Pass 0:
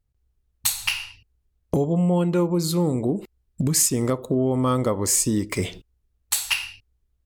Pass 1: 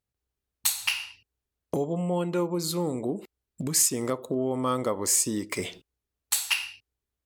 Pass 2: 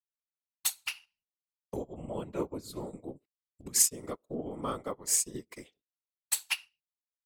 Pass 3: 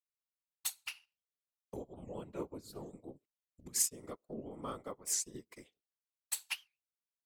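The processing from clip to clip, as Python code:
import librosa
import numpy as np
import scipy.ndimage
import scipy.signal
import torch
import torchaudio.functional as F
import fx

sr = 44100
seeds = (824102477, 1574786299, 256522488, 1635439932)

y1 = fx.highpass(x, sr, hz=350.0, slope=6)
y1 = y1 * librosa.db_to_amplitude(-2.5)
y2 = fx.whisperise(y1, sr, seeds[0])
y2 = fx.upward_expand(y2, sr, threshold_db=-43.0, expansion=2.5)
y3 = fx.record_warp(y2, sr, rpm=78.0, depth_cents=250.0)
y3 = y3 * librosa.db_to_amplitude(-7.5)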